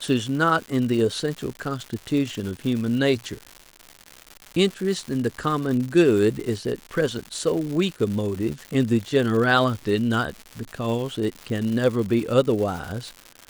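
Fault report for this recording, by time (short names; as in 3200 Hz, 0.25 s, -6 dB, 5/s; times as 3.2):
crackle 220/s -29 dBFS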